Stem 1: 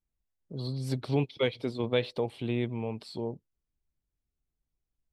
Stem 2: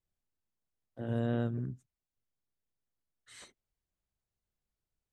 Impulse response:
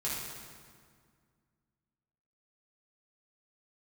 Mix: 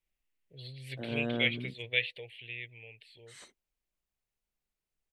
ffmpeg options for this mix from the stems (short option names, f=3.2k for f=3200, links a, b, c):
-filter_complex "[0:a]firequalizer=gain_entry='entry(120,0);entry(200,-24);entry(470,-7);entry(1200,-27);entry(1800,11);entry(2700,15);entry(5300,-14);entry(9200,-3)':delay=0.05:min_phase=1,volume=-3.5dB,afade=t=out:st=1.92:d=0.51:silence=0.421697[a];[1:a]volume=0dB[b];[a][b]amix=inputs=2:normalize=0,equalizer=f=86:w=1.1:g=-10"